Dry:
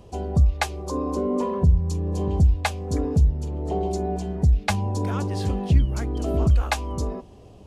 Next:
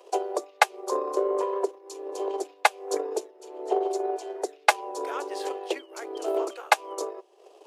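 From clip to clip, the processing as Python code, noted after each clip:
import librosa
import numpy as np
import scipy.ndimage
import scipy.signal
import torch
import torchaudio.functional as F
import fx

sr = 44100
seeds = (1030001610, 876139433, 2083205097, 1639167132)

y = fx.transient(x, sr, attack_db=11, sustain_db=-8)
y = fx.dynamic_eq(y, sr, hz=5000.0, q=0.73, threshold_db=-42.0, ratio=4.0, max_db=-4)
y = scipy.signal.sosfilt(scipy.signal.butter(12, 350.0, 'highpass', fs=sr, output='sos'), y)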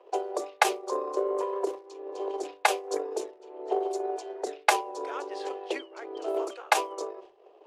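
y = fx.dmg_crackle(x, sr, seeds[0], per_s=96.0, level_db=-55.0)
y = fx.env_lowpass(y, sr, base_hz=2100.0, full_db=-22.5)
y = fx.sustainer(y, sr, db_per_s=150.0)
y = y * librosa.db_to_amplitude(-3.0)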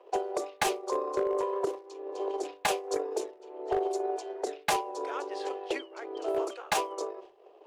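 y = np.clip(10.0 ** (21.5 / 20.0) * x, -1.0, 1.0) / 10.0 ** (21.5 / 20.0)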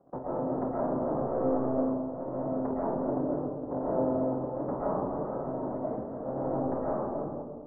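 y = fx.cycle_switch(x, sr, every=3, mode='inverted')
y = scipy.ndimage.gaussian_filter1d(y, 9.4, mode='constant')
y = fx.rev_freeverb(y, sr, rt60_s=1.6, hf_ratio=0.25, predelay_ms=90, drr_db=-7.5)
y = y * librosa.db_to_amplitude(-5.0)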